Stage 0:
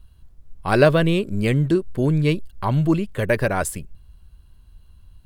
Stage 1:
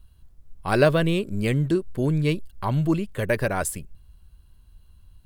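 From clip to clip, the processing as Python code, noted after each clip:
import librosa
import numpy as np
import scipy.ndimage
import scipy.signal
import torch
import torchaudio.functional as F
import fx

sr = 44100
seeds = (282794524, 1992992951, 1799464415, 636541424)

y = fx.high_shelf(x, sr, hz=6600.0, db=4.5)
y = y * 10.0 ** (-3.5 / 20.0)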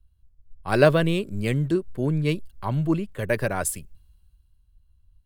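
y = fx.band_widen(x, sr, depth_pct=40)
y = y * 10.0 ** (-1.0 / 20.0)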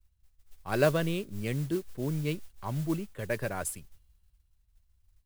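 y = fx.mod_noise(x, sr, seeds[0], snr_db=20)
y = y * 10.0 ** (-8.0 / 20.0)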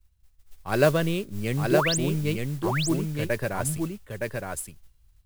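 y = fx.spec_paint(x, sr, seeds[1], shape='rise', start_s=1.72, length_s=0.26, low_hz=310.0, high_hz=9900.0, level_db=-31.0)
y = y + 10.0 ** (-3.5 / 20.0) * np.pad(y, (int(916 * sr / 1000.0), 0))[:len(y)]
y = y * 10.0 ** (4.5 / 20.0)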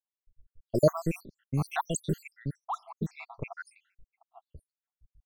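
y = fx.spec_dropout(x, sr, seeds[2], share_pct=81)
y = fx.env_lowpass(y, sr, base_hz=380.0, full_db=-27.5)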